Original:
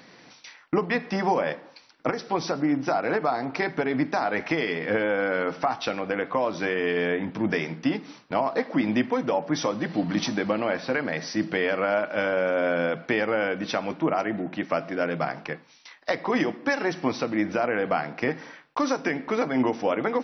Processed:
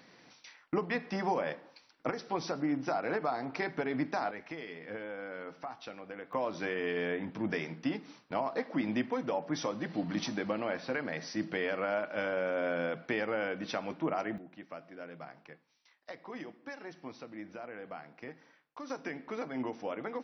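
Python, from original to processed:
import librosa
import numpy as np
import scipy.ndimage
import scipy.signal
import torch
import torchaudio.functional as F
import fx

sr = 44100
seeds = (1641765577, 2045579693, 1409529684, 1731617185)

y = fx.gain(x, sr, db=fx.steps((0.0, -8.0), (4.31, -17.0), (6.33, -8.5), (14.38, -19.5), (18.9, -13.0)))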